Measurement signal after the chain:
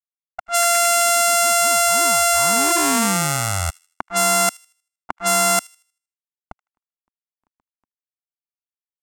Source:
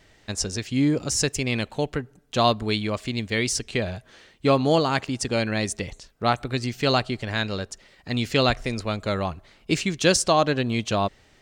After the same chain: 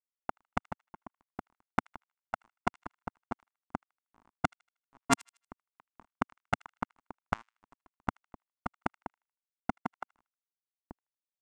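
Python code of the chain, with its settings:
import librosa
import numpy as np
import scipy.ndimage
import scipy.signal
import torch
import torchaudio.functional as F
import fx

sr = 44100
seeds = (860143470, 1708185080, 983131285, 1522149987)

p1 = np.r_[np.sort(x[:len(x) // 64 * 64].reshape(-1, 64), axis=1).ravel(), x[len(x) // 64 * 64:]]
p2 = fx.recorder_agc(p1, sr, target_db=-12.0, rise_db_per_s=16.0, max_gain_db=30)
p3 = fx.cheby_harmonics(p2, sr, harmonics=(4, 5, 8), levels_db=(-33, -20, -27), full_scale_db=3.0)
p4 = fx.level_steps(p3, sr, step_db=21)
p5 = fx.gate_flip(p4, sr, shuts_db=-15.0, range_db=-24)
p6 = np.where(np.abs(p5) >= 10.0 ** (-33.0 / 20.0), p5, 0.0)
p7 = fx.graphic_eq(p6, sr, hz=(125, 250, 500, 1000, 4000, 8000), db=(-6, 5, -11, 11, -5, 10))
p8 = fx.env_lowpass(p7, sr, base_hz=590.0, full_db=-20.0)
p9 = fx.high_shelf(p8, sr, hz=2100.0, db=8.5)
y = p9 + fx.echo_wet_highpass(p9, sr, ms=78, feedback_pct=34, hz=2300.0, wet_db=-22.5, dry=0)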